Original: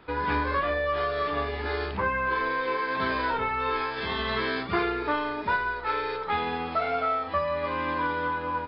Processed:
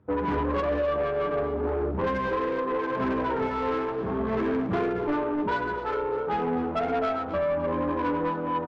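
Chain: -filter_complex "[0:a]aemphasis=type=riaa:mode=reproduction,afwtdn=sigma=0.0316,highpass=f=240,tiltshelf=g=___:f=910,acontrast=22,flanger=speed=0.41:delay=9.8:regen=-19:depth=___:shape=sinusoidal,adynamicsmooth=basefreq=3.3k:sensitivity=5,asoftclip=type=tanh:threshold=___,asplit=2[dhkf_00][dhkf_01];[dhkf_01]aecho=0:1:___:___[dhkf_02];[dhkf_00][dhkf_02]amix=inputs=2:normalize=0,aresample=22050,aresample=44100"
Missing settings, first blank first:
5.5, 9.3, -21.5dB, 258, 0.251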